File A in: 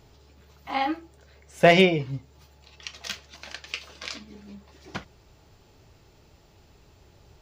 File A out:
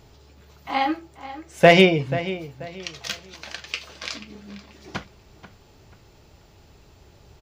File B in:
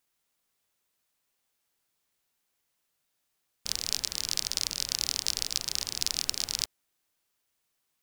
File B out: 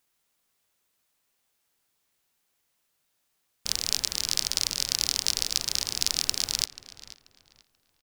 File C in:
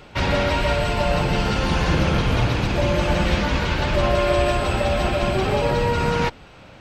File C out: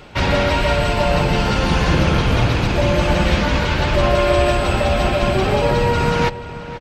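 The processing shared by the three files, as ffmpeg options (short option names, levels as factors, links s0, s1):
-filter_complex "[0:a]asplit=2[s0][s1];[s1]adelay=485,lowpass=f=3500:p=1,volume=0.2,asplit=2[s2][s3];[s3]adelay=485,lowpass=f=3500:p=1,volume=0.32,asplit=2[s4][s5];[s5]adelay=485,lowpass=f=3500:p=1,volume=0.32[s6];[s0][s2][s4][s6]amix=inputs=4:normalize=0,volume=1.5"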